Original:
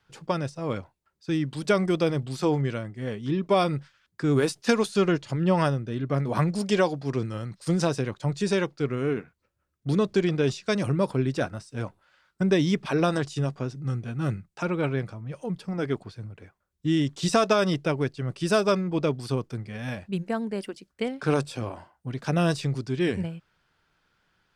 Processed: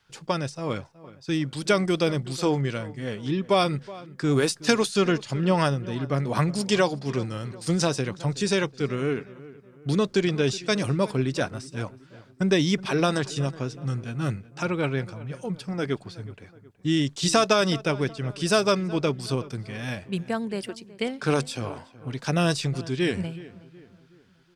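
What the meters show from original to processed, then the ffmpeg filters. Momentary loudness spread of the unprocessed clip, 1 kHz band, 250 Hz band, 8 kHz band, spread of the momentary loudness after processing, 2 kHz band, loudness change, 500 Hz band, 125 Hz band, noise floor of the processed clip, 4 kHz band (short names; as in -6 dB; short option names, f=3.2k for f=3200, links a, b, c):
11 LU, +1.0 dB, 0.0 dB, +6.5 dB, 11 LU, +3.0 dB, +1.0 dB, +0.5 dB, 0.0 dB, -54 dBFS, +5.5 dB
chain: -filter_complex "[0:a]equalizer=f=6.1k:w=0.36:g=6.5,asplit=2[a][b];[b]adelay=371,lowpass=f=2.2k:p=1,volume=-18dB,asplit=2[c][d];[d]adelay=371,lowpass=f=2.2k:p=1,volume=0.45,asplit=2[e][f];[f]adelay=371,lowpass=f=2.2k:p=1,volume=0.45,asplit=2[g][h];[h]adelay=371,lowpass=f=2.2k:p=1,volume=0.45[i];[c][e][g][i]amix=inputs=4:normalize=0[j];[a][j]amix=inputs=2:normalize=0"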